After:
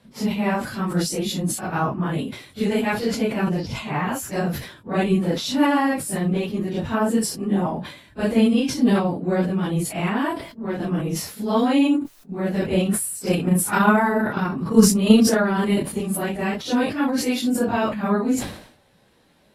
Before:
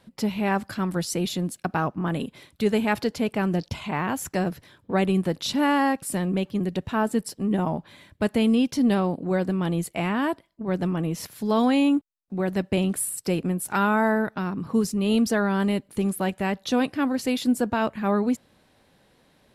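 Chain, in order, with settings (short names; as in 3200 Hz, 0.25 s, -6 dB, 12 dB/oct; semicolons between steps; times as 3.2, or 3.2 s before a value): phase scrambler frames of 0.1 s; 13.27–15.86 transient shaper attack +9 dB, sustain +5 dB; sustainer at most 90 dB/s; gain +1.5 dB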